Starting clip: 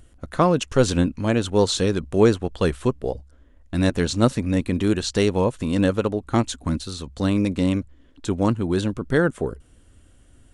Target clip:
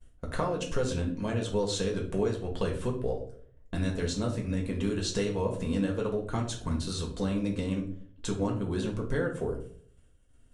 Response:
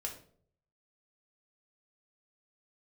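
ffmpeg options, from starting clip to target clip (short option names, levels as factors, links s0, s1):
-filter_complex "[0:a]agate=range=0.0224:threshold=0.00794:ratio=3:detection=peak,acompressor=threshold=0.0501:ratio=6[s0];[1:a]atrim=start_sample=2205[s1];[s0][s1]afir=irnorm=-1:irlink=0"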